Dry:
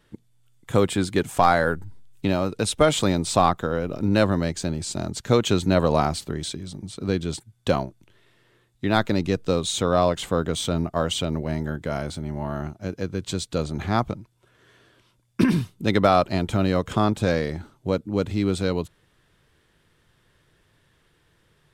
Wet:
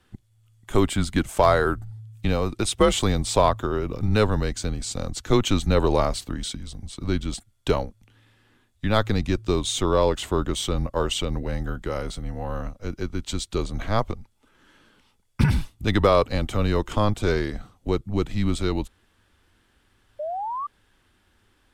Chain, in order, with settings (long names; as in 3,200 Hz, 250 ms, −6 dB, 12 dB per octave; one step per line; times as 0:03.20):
frequency shifter −110 Hz
sound drawn into the spectrogram rise, 0:20.19–0:20.67, 580–1,200 Hz −29 dBFS